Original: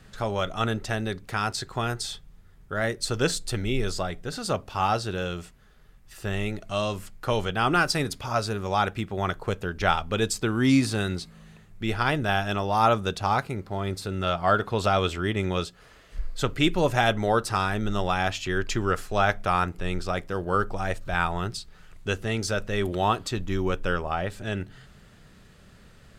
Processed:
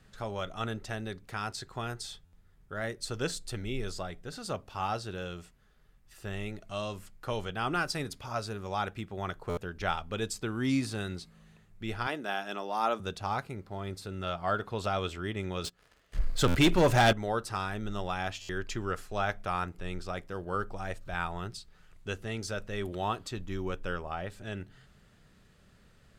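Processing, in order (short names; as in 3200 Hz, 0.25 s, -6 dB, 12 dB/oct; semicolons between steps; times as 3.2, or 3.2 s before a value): 12.07–13 HPF 220 Hz 24 dB/oct; 15.64–17.13 sample leveller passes 3; stuck buffer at 2.25/9.49/16.47/18.41, samples 512, times 6; gain -8.5 dB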